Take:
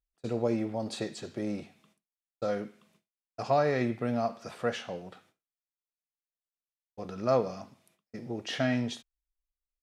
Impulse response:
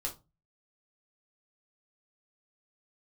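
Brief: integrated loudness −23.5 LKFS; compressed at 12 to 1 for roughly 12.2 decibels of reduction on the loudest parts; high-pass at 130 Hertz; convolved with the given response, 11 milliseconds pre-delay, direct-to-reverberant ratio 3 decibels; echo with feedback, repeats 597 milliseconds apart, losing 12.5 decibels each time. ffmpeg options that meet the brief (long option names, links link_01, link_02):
-filter_complex "[0:a]highpass=130,acompressor=threshold=-33dB:ratio=12,aecho=1:1:597|1194|1791:0.237|0.0569|0.0137,asplit=2[link_01][link_02];[1:a]atrim=start_sample=2205,adelay=11[link_03];[link_02][link_03]afir=irnorm=-1:irlink=0,volume=-4dB[link_04];[link_01][link_04]amix=inputs=2:normalize=0,volume=15.5dB"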